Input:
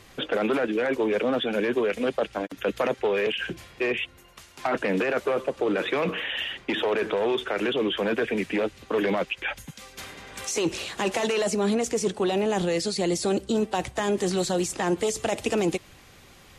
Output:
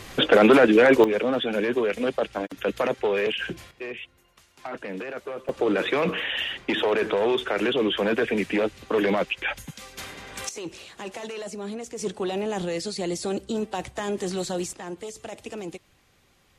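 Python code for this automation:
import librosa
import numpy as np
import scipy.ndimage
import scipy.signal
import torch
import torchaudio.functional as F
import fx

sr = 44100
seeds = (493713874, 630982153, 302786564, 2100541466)

y = fx.gain(x, sr, db=fx.steps((0.0, 9.5), (1.04, 0.5), (3.71, -9.0), (5.49, 2.0), (10.49, -10.0), (11.99, -3.5), (14.73, -11.0)))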